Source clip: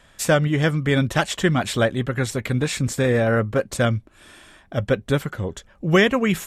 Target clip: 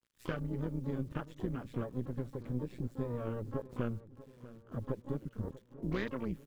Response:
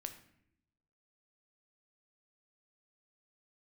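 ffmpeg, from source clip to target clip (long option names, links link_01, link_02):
-filter_complex "[0:a]aeval=exprs='if(lt(val(0),0),0.708*val(0),val(0))':channel_layout=same,afwtdn=0.0708,equalizer=frequency=7300:width=0.65:gain=-13.5,acompressor=threshold=-29dB:ratio=3,tremolo=f=120:d=0.824,acrusher=bits=10:mix=0:aa=0.000001,asplit=2[link_01][link_02];[link_02]asetrate=88200,aresample=44100,atempo=0.5,volume=-11dB[link_03];[link_01][link_03]amix=inputs=2:normalize=0,equalizer=frequency=730:width=2.2:gain=-9.5,asplit=2[link_04][link_05];[link_05]adelay=641,lowpass=frequency=2400:poles=1,volume=-16.5dB,asplit=2[link_06][link_07];[link_07]adelay=641,lowpass=frequency=2400:poles=1,volume=0.55,asplit=2[link_08][link_09];[link_09]adelay=641,lowpass=frequency=2400:poles=1,volume=0.55,asplit=2[link_10][link_11];[link_11]adelay=641,lowpass=frequency=2400:poles=1,volume=0.55,asplit=2[link_12][link_13];[link_13]adelay=641,lowpass=frequency=2400:poles=1,volume=0.55[link_14];[link_06][link_08][link_10][link_12][link_14]amix=inputs=5:normalize=0[link_15];[link_04][link_15]amix=inputs=2:normalize=0,volume=-3dB"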